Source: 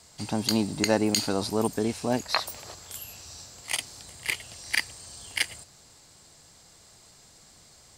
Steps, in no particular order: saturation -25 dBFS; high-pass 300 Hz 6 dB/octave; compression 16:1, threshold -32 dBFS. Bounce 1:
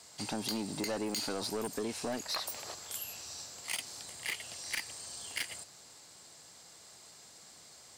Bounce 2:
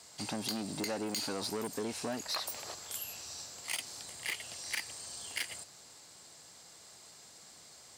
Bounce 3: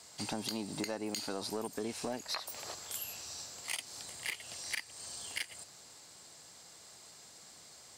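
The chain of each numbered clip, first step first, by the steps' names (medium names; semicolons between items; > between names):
high-pass > saturation > compression; saturation > high-pass > compression; high-pass > compression > saturation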